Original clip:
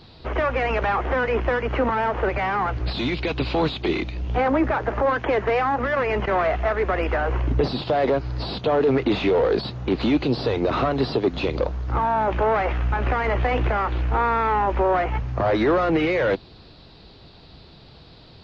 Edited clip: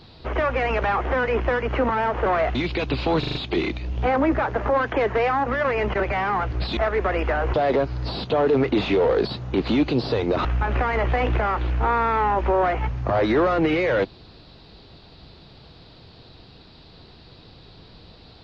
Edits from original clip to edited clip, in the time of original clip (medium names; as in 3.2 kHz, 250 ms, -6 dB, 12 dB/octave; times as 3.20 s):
2.26–3.03 s: swap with 6.32–6.61 s
3.67 s: stutter 0.04 s, 5 plays
7.38–7.88 s: delete
10.79–12.76 s: delete